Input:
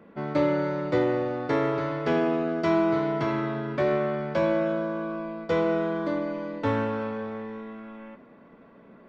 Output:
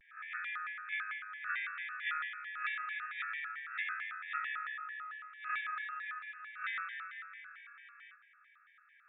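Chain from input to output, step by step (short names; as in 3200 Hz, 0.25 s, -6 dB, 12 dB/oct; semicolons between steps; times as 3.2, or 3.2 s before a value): spectral swells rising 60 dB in 0.34 s; brick-wall FIR band-pass 1400–3200 Hz; bell 2500 Hz -12.5 dB 0.24 oct; shaped vibrato square 4.5 Hz, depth 250 cents; gain +1.5 dB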